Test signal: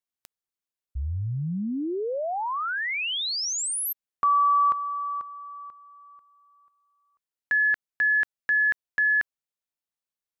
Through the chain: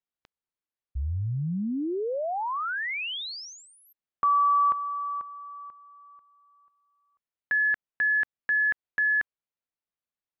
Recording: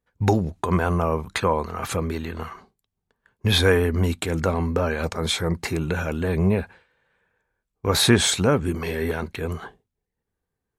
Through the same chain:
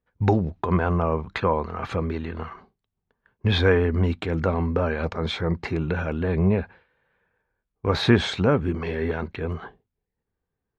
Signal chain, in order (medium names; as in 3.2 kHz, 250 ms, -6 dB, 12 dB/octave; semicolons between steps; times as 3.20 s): distance through air 240 m